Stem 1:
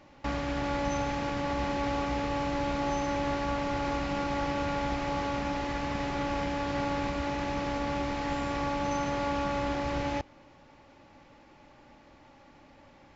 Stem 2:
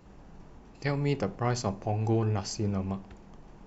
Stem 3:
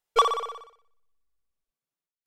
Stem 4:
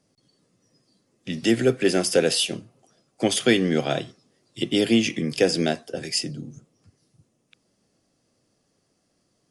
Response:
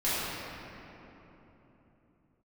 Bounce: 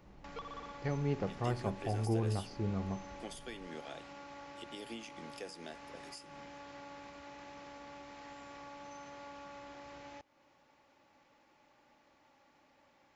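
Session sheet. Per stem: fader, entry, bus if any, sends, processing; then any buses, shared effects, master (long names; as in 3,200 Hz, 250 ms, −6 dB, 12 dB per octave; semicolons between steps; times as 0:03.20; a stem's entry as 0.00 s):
−8.0 dB, 0.00 s, bus A, no send, high-shelf EQ 7,900 Hz +6.5 dB; downward compressor 2 to 1, threshold −41 dBFS, peak gain reduction 8.5 dB
−5.5 dB, 0.00 s, no bus, no send, Butterworth low-pass 5,200 Hz
−13.0 dB, 0.20 s, bus A, no send, Butterworth low-pass 5,100 Hz; downward compressor, threshold −26 dBFS, peak gain reduction 10.5 dB
−17.5 dB, 0.00 s, bus A, no send, no processing
bus A: 0.0 dB, spectral tilt +3.5 dB per octave; downward compressor, threshold −38 dBFS, peak gain reduction 9.5 dB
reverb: not used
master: high-shelf EQ 2,300 Hz −12 dB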